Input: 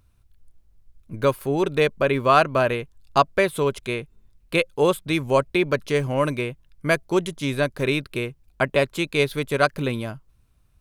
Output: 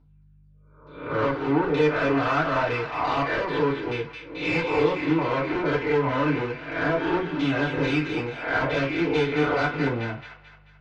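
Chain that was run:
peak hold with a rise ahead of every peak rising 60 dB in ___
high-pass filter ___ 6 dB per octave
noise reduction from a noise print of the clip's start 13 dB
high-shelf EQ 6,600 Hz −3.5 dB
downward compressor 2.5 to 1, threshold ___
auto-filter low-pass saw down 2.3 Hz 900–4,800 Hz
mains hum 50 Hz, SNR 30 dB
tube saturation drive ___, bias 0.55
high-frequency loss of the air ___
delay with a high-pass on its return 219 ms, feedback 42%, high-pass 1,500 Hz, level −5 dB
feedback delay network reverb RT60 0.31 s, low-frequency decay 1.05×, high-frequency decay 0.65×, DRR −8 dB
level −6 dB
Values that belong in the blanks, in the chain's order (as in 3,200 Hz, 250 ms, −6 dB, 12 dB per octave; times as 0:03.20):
0.70 s, 160 Hz, −19 dBFS, 21 dB, 170 metres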